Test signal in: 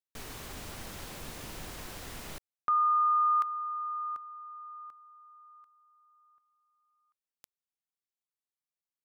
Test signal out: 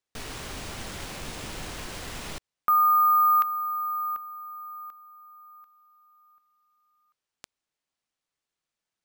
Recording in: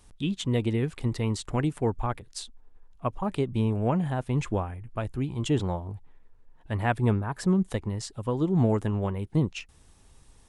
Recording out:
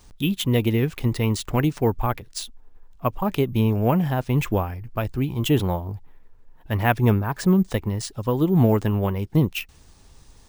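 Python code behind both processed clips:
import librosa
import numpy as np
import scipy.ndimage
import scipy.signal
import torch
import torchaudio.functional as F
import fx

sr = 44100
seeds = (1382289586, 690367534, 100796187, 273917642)

y = fx.dynamic_eq(x, sr, hz=2700.0, q=1.8, threshold_db=-51.0, ratio=4.0, max_db=4)
y = np.repeat(y[::3], 3)[:len(y)]
y = F.gain(torch.from_numpy(y), 5.5).numpy()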